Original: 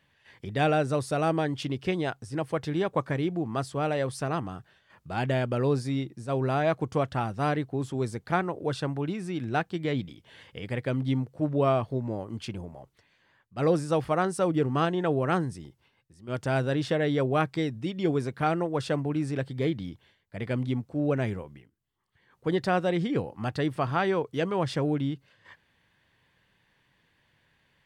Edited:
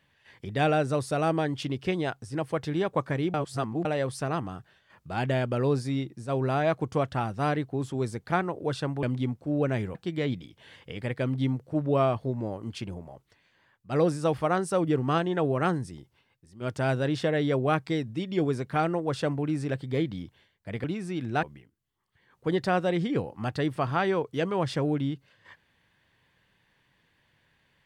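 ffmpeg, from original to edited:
-filter_complex "[0:a]asplit=7[a][b][c][d][e][f][g];[a]atrim=end=3.342[h];[b]atrim=start=3.338:end=3.852,asetpts=PTS-STARTPTS,areverse[i];[c]atrim=start=3.848:end=9.032[j];[d]atrim=start=20.508:end=21.432[k];[e]atrim=start=9.618:end=20.512[l];[f]atrim=start=9.028:end=9.622[m];[g]atrim=start=21.428[n];[h][i]acrossfade=d=0.004:c1=hsin:c2=hsin[o];[o][j]acrossfade=d=0.004:c1=hsin:c2=hsin[p];[p][k]acrossfade=d=0.004:c1=hsin:c2=hsin[q];[q][l]acrossfade=d=0.004:c1=hsin:c2=hsin[r];[r][m]acrossfade=d=0.004:c1=hsin:c2=hsin[s];[s][n]acrossfade=d=0.004:c1=hsin:c2=hsin"

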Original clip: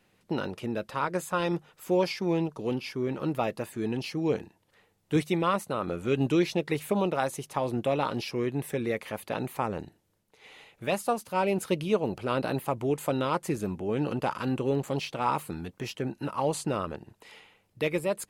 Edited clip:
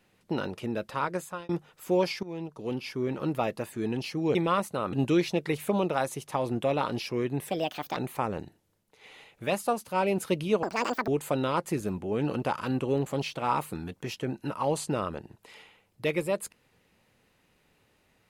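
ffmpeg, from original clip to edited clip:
-filter_complex "[0:a]asplit=9[a][b][c][d][e][f][g][h][i];[a]atrim=end=1.49,asetpts=PTS-STARTPTS,afade=t=out:st=0.92:d=0.57:c=qsin[j];[b]atrim=start=1.49:end=2.23,asetpts=PTS-STARTPTS,afade=t=in:d=0.004:c=hsin,afade=t=out:st=0.736:d=0.004:c=hsin:silence=0.158489[k];[c]atrim=start=2.23:end=4.352,asetpts=PTS-STARTPTS,afade=t=in:d=0.69:silence=0.158489[l];[d]atrim=start=5.308:end=5.892[m];[e]atrim=start=6.148:end=8.724[n];[f]atrim=start=8.72:end=9.37,asetpts=PTS-STARTPTS,asetrate=61299,aresample=44100,atrim=end_sample=20622,asetpts=PTS-STARTPTS[o];[g]atrim=start=9.366:end=12.034[p];[h]atrim=start=12.03:end=12.85,asetpts=PTS-STARTPTS,asetrate=80262,aresample=44100,atrim=end_sample=19869,asetpts=PTS-STARTPTS[q];[i]atrim=start=12.846[r];[j][k][l]concat=n=3:v=0:a=1[s];[s][m]acrossfade=d=0.004:c1=hsin:c2=hsin[t];[t][n]acrossfade=d=0.004:c1=hsin:c2=hsin[u];[u][o]acrossfade=d=0.004:c1=hsin:c2=hsin[v];[v][p]acrossfade=d=0.004:c1=hsin:c2=hsin[w];[w][q]acrossfade=d=0.004:c1=hsin:c2=hsin[x];[x][r]acrossfade=d=0.004:c1=hsin:c2=hsin"

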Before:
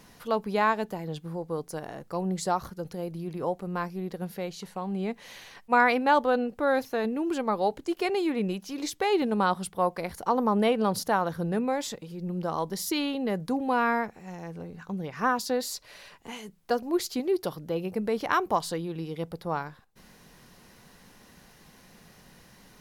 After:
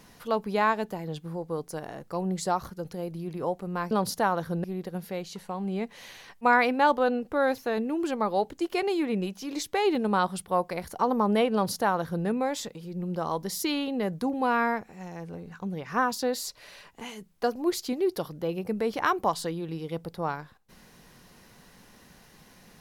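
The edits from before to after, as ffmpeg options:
-filter_complex "[0:a]asplit=3[a][b][c];[a]atrim=end=3.912[d];[b]atrim=start=10.798:end=11.532[e];[c]atrim=start=3.908[f];[d][e]acrossfade=d=0.004:c1=hsin:c2=hsin[g];[g][f]acrossfade=d=0.004:c1=hsin:c2=hsin"

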